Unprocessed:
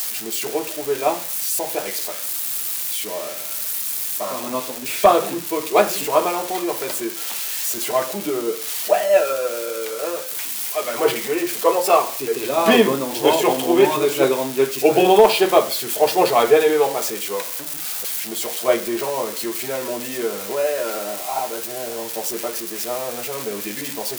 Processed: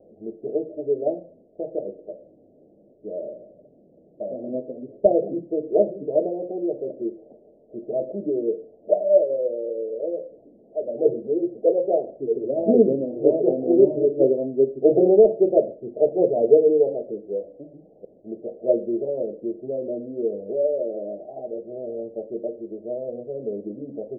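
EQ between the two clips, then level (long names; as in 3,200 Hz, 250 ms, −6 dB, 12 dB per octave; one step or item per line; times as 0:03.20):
Butterworth low-pass 630 Hz 72 dB per octave
low-shelf EQ 110 Hz −7 dB
0.0 dB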